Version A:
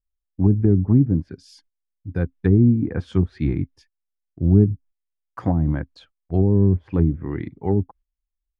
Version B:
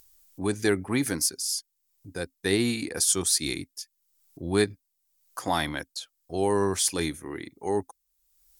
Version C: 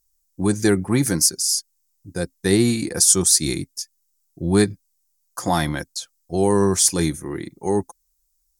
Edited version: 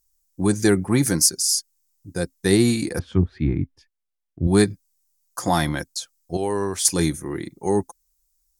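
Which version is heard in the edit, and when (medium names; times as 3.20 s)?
C
2.99–4.47 s: from A
6.37–6.85 s: from B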